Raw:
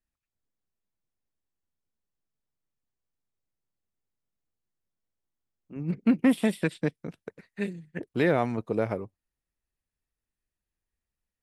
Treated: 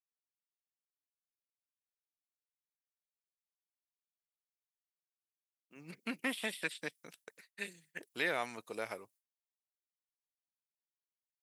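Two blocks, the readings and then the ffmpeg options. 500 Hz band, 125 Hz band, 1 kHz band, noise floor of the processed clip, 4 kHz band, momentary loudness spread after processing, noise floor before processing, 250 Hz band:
−14.0 dB, −24.0 dB, −9.0 dB, below −85 dBFS, +0.5 dB, 21 LU, below −85 dBFS, −20.0 dB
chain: -filter_complex "[0:a]agate=range=-33dB:threshold=-48dB:ratio=3:detection=peak,aderivative,acrossover=split=4000[link_01][link_02];[link_02]acompressor=threshold=-60dB:ratio=4:attack=1:release=60[link_03];[link_01][link_03]amix=inputs=2:normalize=0,volume=9dB"

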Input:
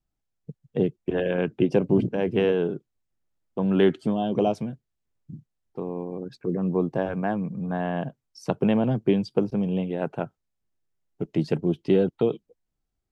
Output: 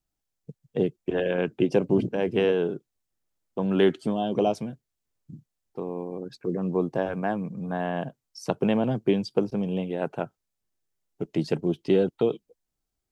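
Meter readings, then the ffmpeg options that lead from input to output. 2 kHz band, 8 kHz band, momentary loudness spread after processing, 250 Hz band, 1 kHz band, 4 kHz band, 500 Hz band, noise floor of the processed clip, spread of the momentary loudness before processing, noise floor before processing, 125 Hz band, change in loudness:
+0.5 dB, can't be measured, 13 LU, −2.0 dB, 0.0 dB, +1.5 dB, −0.5 dB, −83 dBFS, 14 LU, −81 dBFS, −3.5 dB, −1.5 dB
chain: -af "bass=frequency=250:gain=-4,treble=frequency=4000:gain=5"

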